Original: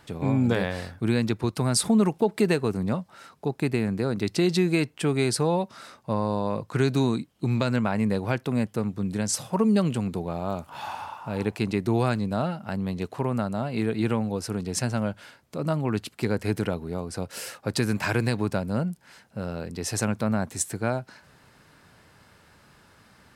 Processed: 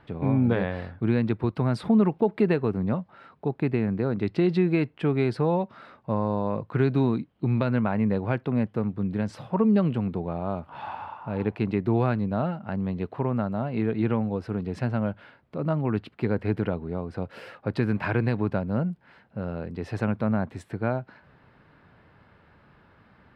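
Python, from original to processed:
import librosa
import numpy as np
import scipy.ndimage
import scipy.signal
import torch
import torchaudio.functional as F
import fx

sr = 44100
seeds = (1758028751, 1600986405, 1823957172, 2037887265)

y = fx.air_absorb(x, sr, metres=420.0)
y = y * librosa.db_to_amplitude(1.0)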